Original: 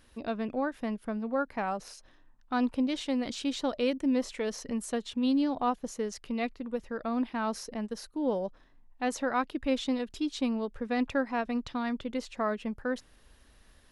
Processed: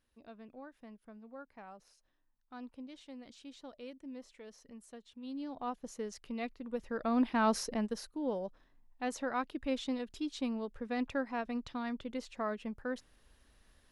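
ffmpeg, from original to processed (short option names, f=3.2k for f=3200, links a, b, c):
-af "volume=3.5dB,afade=t=in:st=5.21:d=0.76:silence=0.251189,afade=t=in:st=6.6:d=0.95:silence=0.298538,afade=t=out:st=7.55:d=0.65:silence=0.334965"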